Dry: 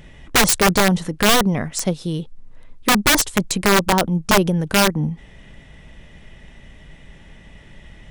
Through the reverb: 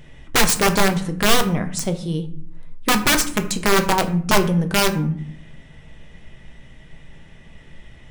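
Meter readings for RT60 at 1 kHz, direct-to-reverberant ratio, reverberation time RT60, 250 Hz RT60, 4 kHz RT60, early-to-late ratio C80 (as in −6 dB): 0.55 s, 6.5 dB, 0.60 s, 0.90 s, 0.35 s, 16.0 dB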